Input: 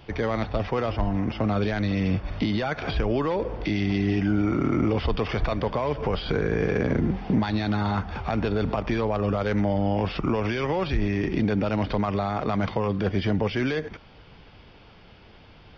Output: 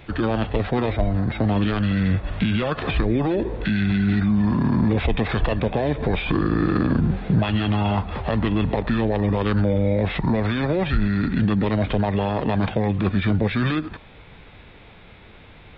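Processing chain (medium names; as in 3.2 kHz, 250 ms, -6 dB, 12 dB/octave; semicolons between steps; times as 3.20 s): peaking EQ 4.7 kHz +5 dB 0.95 oct; formant shift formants -5 st; trim +4 dB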